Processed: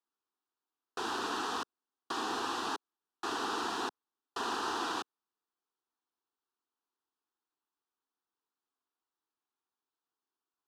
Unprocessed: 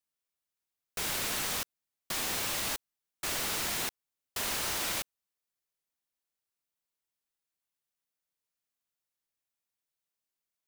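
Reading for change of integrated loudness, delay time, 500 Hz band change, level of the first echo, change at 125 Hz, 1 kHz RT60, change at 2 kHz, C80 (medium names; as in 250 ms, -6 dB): -4.0 dB, no echo, +2.0 dB, no echo, -11.5 dB, no reverb, -3.0 dB, no reverb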